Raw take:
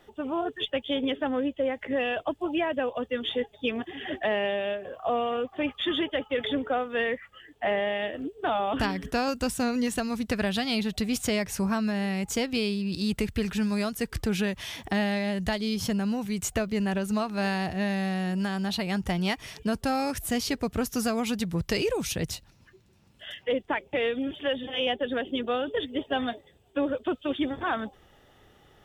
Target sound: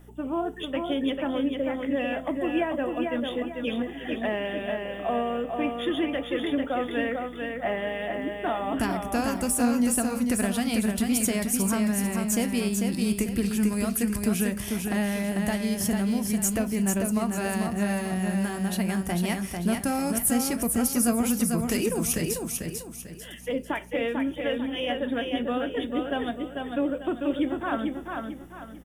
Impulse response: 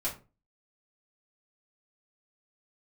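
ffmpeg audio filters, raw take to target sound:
-filter_complex "[0:a]equalizer=frequency=250:width_type=o:width=0.67:gain=6,equalizer=frequency=4000:width_type=o:width=0.67:gain=-9,equalizer=frequency=10000:width_type=o:width=0.67:gain=9,aeval=exprs='val(0)+0.00501*(sin(2*PI*60*n/s)+sin(2*PI*2*60*n/s)/2+sin(2*PI*3*60*n/s)/3+sin(2*PI*4*60*n/s)/4+sin(2*PI*5*60*n/s)/5)':channel_layout=same,highshelf=frequency=8400:gain=10.5,aecho=1:1:445|890|1335|1780|2225:0.596|0.214|0.0772|0.0278|0.01,asplit=2[link_01][link_02];[1:a]atrim=start_sample=2205[link_03];[link_02][link_03]afir=irnorm=-1:irlink=0,volume=-13.5dB[link_04];[link_01][link_04]amix=inputs=2:normalize=0,volume=-3.5dB"

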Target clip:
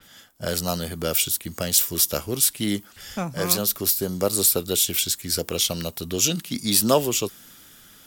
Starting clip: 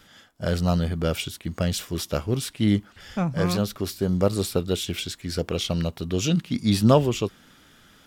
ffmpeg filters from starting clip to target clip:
ffmpeg -i in.wav -filter_complex "[0:a]aemphasis=mode=production:type=50fm,acrossover=split=230|1400|2300[link_01][link_02][link_03][link_04];[link_01]acompressor=threshold=-34dB:ratio=6[link_05];[link_05][link_02][link_03][link_04]amix=inputs=4:normalize=0,adynamicequalizer=threshold=0.0112:dfrequency=4500:dqfactor=0.7:tfrequency=4500:tqfactor=0.7:attack=5:release=100:ratio=0.375:range=3:mode=boostabove:tftype=highshelf" out.wav

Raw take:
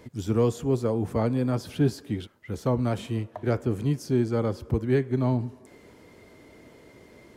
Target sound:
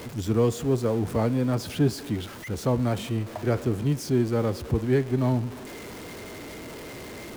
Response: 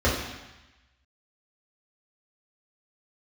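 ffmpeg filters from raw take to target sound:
-af "aeval=exprs='val(0)+0.5*0.0168*sgn(val(0))':channel_layout=same"

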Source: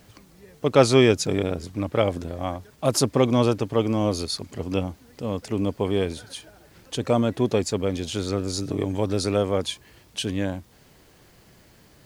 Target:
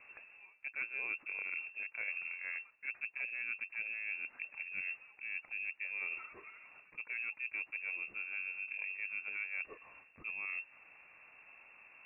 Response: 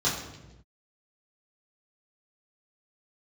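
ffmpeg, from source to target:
-af "aeval=exprs='if(lt(val(0),0),0.708*val(0),val(0))':channel_layout=same,highpass=49,areverse,acompressor=threshold=-35dB:ratio=8,areverse,lowpass=frequency=2400:width_type=q:width=0.5098,lowpass=frequency=2400:width_type=q:width=0.6013,lowpass=frequency=2400:width_type=q:width=0.9,lowpass=frequency=2400:width_type=q:width=2.563,afreqshift=-2800,volume=-2.5dB"

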